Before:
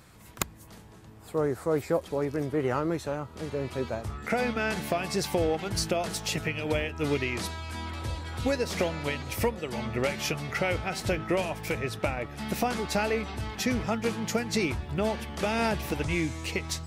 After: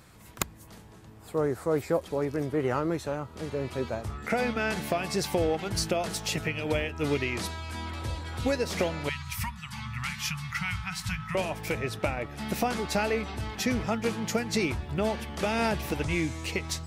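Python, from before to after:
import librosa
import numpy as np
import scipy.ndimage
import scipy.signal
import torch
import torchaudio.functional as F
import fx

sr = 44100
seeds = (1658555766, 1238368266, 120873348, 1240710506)

y = fx.cheby1_bandstop(x, sr, low_hz=180.0, high_hz=1000.0, order=3, at=(9.09, 11.35))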